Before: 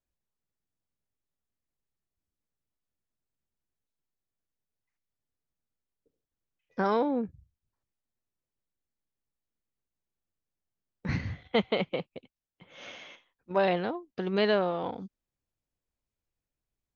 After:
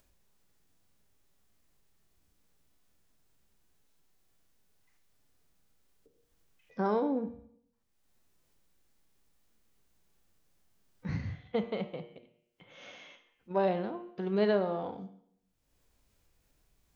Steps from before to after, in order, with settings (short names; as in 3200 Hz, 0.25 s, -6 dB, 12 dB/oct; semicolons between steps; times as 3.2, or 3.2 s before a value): de-hum 118.1 Hz, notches 27; dynamic EQ 2800 Hz, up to -6 dB, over -45 dBFS, Q 0.83; harmonic-percussive split percussive -8 dB; upward compressor, threshold -50 dBFS; on a send: reverb RT60 0.75 s, pre-delay 3 ms, DRR 14 dB; on the sum: gain -1.5 dB